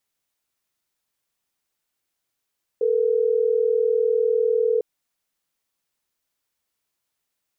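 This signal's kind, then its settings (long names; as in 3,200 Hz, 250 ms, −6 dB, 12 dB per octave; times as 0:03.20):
call progress tone ringback tone, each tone −20 dBFS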